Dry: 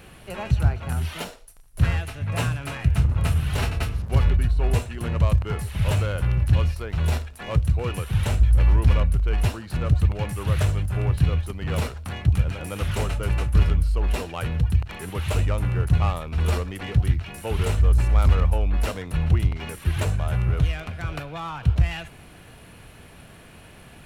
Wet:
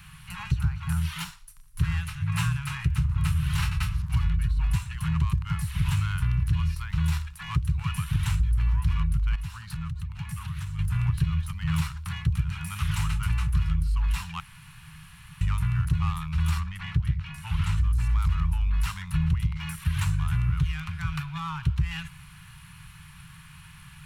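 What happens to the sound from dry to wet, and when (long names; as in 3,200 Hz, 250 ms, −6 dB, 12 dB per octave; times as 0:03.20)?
0:09.35–0:10.79: downward compressor 10 to 1, threshold −29 dBFS
0:14.40–0:15.41: fill with room tone
0:16.59–0:17.76: high-shelf EQ 5,300 Hz → 7,800 Hz −11.5 dB
whole clip: elliptic band-stop filter 160–1,000 Hz, stop band 40 dB; parametric band 160 Hz +6.5 dB 0.29 octaves; downward compressor, threshold −20 dBFS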